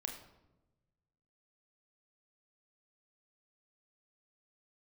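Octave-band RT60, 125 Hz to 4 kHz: 1.9, 1.4, 1.2, 0.90, 0.70, 0.60 s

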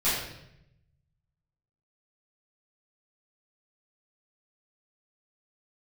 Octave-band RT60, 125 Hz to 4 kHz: 1.6, 1.1, 0.90, 0.75, 0.75, 0.70 s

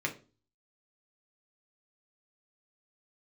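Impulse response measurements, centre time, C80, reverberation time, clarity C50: 10 ms, 20.0 dB, 0.35 s, 14.0 dB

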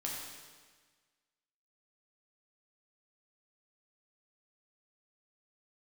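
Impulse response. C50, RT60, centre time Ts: 0.5 dB, 1.5 s, 81 ms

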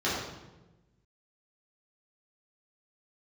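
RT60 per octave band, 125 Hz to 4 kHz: 1.6, 1.4, 1.2, 1.0, 0.85, 0.75 s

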